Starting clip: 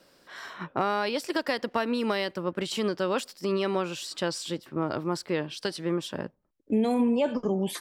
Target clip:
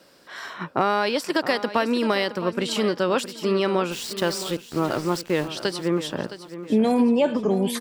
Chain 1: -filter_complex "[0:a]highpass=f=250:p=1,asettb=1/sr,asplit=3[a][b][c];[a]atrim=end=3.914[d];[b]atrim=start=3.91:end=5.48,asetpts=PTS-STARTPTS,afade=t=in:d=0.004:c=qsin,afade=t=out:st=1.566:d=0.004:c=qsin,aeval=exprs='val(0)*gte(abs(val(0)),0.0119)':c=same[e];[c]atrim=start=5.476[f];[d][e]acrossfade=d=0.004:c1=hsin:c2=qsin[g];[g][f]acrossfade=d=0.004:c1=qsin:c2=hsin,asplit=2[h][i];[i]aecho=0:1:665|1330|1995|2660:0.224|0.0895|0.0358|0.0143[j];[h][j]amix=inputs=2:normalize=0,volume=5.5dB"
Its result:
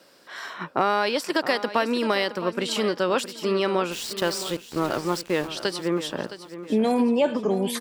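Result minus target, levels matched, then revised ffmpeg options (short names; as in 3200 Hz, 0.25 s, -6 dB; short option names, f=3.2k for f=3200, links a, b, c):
125 Hz band -2.5 dB
-filter_complex "[0:a]highpass=f=78:p=1,asettb=1/sr,asplit=3[a][b][c];[a]atrim=end=3.914[d];[b]atrim=start=3.91:end=5.48,asetpts=PTS-STARTPTS,afade=t=in:d=0.004:c=qsin,afade=t=out:st=1.566:d=0.004:c=qsin,aeval=exprs='val(0)*gte(abs(val(0)),0.0119)':c=same[e];[c]atrim=start=5.476[f];[d][e]acrossfade=d=0.004:c1=hsin:c2=qsin[g];[g][f]acrossfade=d=0.004:c1=qsin:c2=hsin,asplit=2[h][i];[i]aecho=0:1:665|1330|1995|2660:0.224|0.0895|0.0358|0.0143[j];[h][j]amix=inputs=2:normalize=0,volume=5.5dB"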